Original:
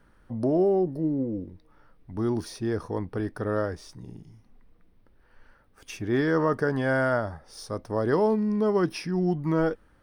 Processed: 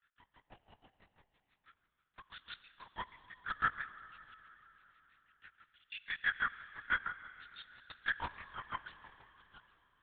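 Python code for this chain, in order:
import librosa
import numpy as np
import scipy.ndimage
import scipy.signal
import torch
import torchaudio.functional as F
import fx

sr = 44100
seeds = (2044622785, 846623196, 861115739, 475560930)

y = fx.tape_stop_end(x, sr, length_s=0.78)
y = scipy.signal.sosfilt(scipy.signal.butter(4, 1300.0, 'highpass', fs=sr, output='sos'), y)
y = fx.high_shelf(y, sr, hz=2600.0, db=12.0)
y = fx.rider(y, sr, range_db=5, speed_s=0.5)
y = fx.step_gate(y, sr, bpm=147, pattern='.xxxx..xxxxx.', floor_db=-12.0, edge_ms=4.5)
y = fx.granulator(y, sr, seeds[0], grain_ms=100.0, per_s=6.1, spray_ms=100.0, spread_st=0)
y = fx.rev_schroeder(y, sr, rt60_s=3.9, comb_ms=29, drr_db=13.5)
y = fx.lpc_vocoder(y, sr, seeds[1], excitation='whisper', order=8)
y = y * librosa.db_to_amplitude(4.0)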